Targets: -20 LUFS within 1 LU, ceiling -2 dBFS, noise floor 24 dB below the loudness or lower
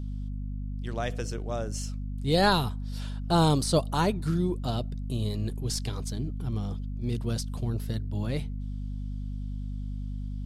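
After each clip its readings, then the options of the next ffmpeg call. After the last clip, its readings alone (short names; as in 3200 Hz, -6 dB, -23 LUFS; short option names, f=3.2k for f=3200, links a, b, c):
hum 50 Hz; harmonics up to 250 Hz; hum level -31 dBFS; loudness -30.5 LUFS; peak -10.5 dBFS; loudness target -20.0 LUFS
-> -af "bandreject=f=50:t=h:w=4,bandreject=f=100:t=h:w=4,bandreject=f=150:t=h:w=4,bandreject=f=200:t=h:w=4,bandreject=f=250:t=h:w=4"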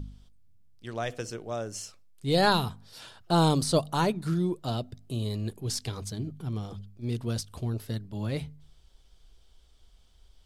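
hum none; loudness -30.0 LUFS; peak -9.5 dBFS; loudness target -20.0 LUFS
-> -af "volume=10dB,alimiter=limit=-2dB:level=0:latency=1"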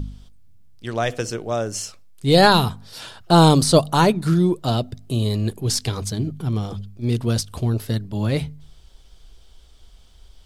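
loudness -20.0 LUFS; peak -2.0 dBFS; noise floor -49 dBFS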